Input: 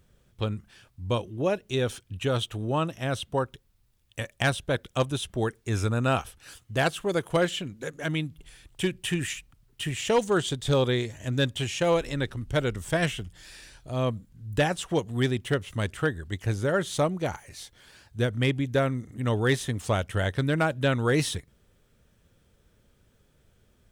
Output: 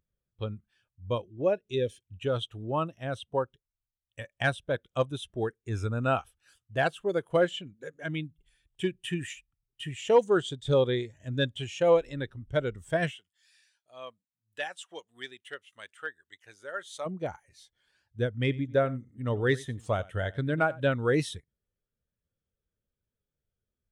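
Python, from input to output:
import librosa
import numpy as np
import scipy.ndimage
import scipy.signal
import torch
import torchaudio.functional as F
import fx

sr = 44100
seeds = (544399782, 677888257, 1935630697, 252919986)

y = fx.spec_box(x, sr, start_s=1.72, length_s=0.29, low_hz=620.0, high_hz=1600.0, gain_db=-14)
y = fx.highpass(y, sr, hz=1500.0, slope=6, at=(13.1, 17.05), fade=0.02)
y = fx.echo_single(y, sr, ms=91, db=-15.0, at=(18.48, 20.91), fade=0.02)
y = fx.low_shelf(y, sr, hz=350.0, db=-6.0)
y = fx.spectral_expand(y, sr, expansion=1.5)
y = F.gain(torch.from_numpy(y), 2.0).numpy()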